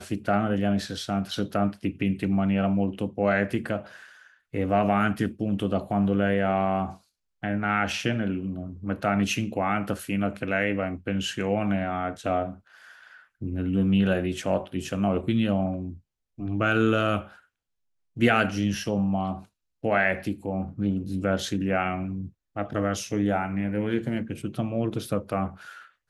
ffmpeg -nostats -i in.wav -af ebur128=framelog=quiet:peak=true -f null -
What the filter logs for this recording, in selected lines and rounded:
Integrated loudness:
  I:         -26.7 LUFS
  Threshold: -37.2 LUFS
Loudness range:
  LRA:         2.5 LU
  Threshold: -47.1 LUFS
  LRA low:   -28.5 LUFS
  LRA high:  -26.0 LUFS
True peak:
  Peak:       -7.9 dBFS